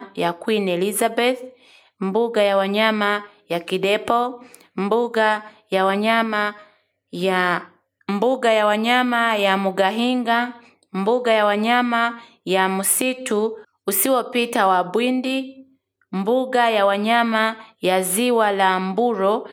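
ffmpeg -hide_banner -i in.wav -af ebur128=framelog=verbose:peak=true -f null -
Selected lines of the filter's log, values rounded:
Integrated loudness:
  I:         -19.6 LUFS
  Threshold: -30.1 LUFS
Loudness range:
  LRA:         2.3 LU
  Threshold: -40.1 LUFS
  LRA low:   -21.2 LUFS
  LRA high:  -19.0 LUFS
True peak:
  Peak:       -1.8 dBFS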